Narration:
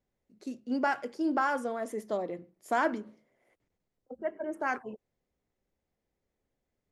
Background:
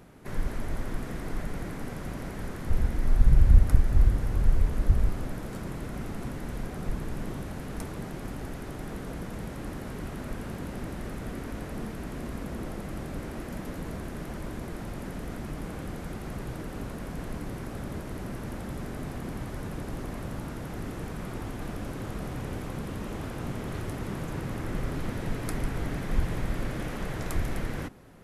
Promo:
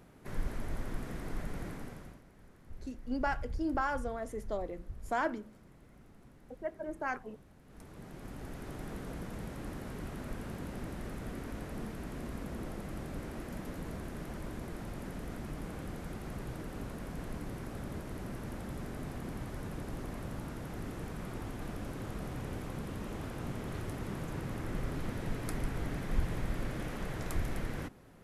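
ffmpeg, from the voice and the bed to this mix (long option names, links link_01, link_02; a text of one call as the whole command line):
ffmpeg -i stem1.wav -i stem2.wav -filter_complex "[0:a]adelay=2400,volume=-4.5dB[link_01];[1:a]volume=12dB,afade=type=out:start_time=1.68:duration=0.54:silence=0.141254,afade=type=in:start_time=7.64:duration=1.1:silence=0.133352[link_02];[link_01][link_02]amix=inputs=2:normalize=0" out.wav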